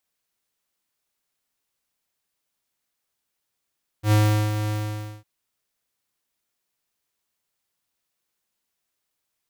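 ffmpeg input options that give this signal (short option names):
-f lavfi -i "aevalsrc='0.158*(2*lt(mod(106*t,1),0.5)-1)':d=1.205:s=44100,afade=t=in:d=0.088,afade=t=out:st=0.088:d=0.393:silence=0.355,afade=t=out:st=0.67:d=0.535"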